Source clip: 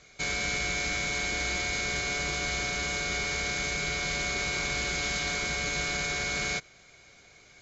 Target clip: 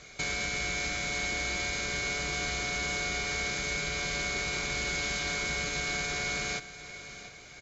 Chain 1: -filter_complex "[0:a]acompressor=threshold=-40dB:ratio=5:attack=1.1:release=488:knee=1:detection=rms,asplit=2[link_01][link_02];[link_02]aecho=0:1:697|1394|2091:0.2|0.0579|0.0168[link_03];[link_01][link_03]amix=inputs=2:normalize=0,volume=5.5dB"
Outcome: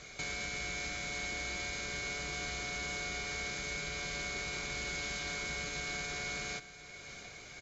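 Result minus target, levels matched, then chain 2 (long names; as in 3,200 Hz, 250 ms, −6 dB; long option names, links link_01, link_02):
downward compressor: peak gain reduction +6.5 dB
-filter_complex "[0:a]acompressor=threshold=-32dB:ratio=5:attack=1.1:release=488:knee=1:detection=rms,asplit=2[link_01][link_02];[link_02]aecho=0:1:697|1394|2091:0.2|0.0579|0.0168[link_03];[link_01][link_03]amix=inputs=2:normalize=0,volume=5.5dB"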